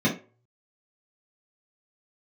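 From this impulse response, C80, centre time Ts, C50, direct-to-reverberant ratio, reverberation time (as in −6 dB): 15.5 dB, 22 ms, 9.0 dB, −7.0 dB, 0.35 s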